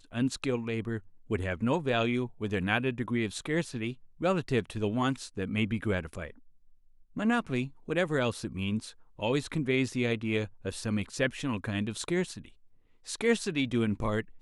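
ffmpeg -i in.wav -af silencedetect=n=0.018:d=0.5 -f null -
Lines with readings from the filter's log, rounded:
silence_start: 6.30
silence_end: 7.17 | silence_duration: 0.87
silence_start: 12.45
silence_end: 13.09 | silence_duration: 0.63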